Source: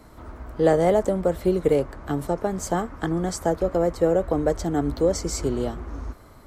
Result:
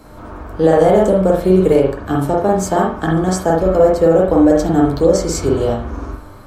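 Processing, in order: band-stop 2 kHz, Q 9.9; feedback comb 100 Hz, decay 0.17 s, harmonics all, mix 70%; reverberation, pre-delay 43 ms, DRR -1.5 dB; loudness maximiser +12.5 dB; trim -1 dB

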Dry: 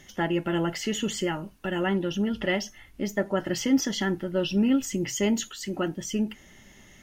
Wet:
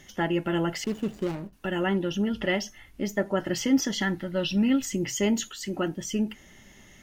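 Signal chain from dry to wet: 0.84–1.53 s: median filter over 41 samples; 4.02–4.89 s: graphic EQ with 31 bands 400 Hz -8 dB, 2 kHz +6 dB, 4 kHz +7 dB

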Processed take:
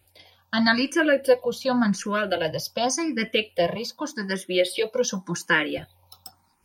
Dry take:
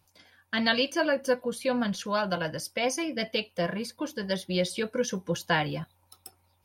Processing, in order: 3.75–5.78 s: high-pass 210 Hz 12 dB/octave; barber-pole phaser +0.87 Hz; trim +8 dB

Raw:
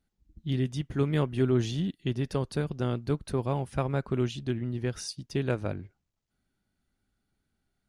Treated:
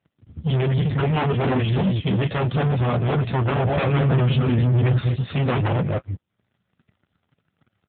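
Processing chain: chunks repeated in reverse 166 ms, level -6 dB; flange 0.35 Hz, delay 6.9 ms, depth 5.9 ms, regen -42%; comb 1.6 ms, depth 91%; flange 1.2 Hz, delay 5.4 ms, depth 6.9 ms, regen -24%; sine folder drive 14 dB, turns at -18 dBFS; waveshaping leveller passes 3; 3.64–5.11 s: bass shelf 240 Hz +4 dB; AMR-NB 7.95 kbps 8 kHz

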